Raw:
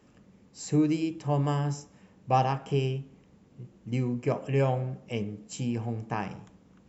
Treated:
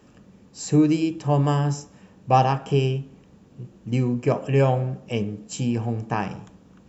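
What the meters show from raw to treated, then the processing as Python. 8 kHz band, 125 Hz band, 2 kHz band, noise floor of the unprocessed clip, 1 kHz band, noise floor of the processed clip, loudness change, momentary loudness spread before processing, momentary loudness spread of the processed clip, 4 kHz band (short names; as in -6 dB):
n/a, +6.5 dB, +6.0 dB, -60 dBFS, +6.5 dB, -53 dBFS, +6.5 dB, 15 LU, 15 LU, +6.5 dB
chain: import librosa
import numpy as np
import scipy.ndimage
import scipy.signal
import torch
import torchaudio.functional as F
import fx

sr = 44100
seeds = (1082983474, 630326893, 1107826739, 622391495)

y = fx.notch(x, sr, hz=2100.0, q=11.0)
y = F.gain(torch.from_numpy(y), 6.5).numpy()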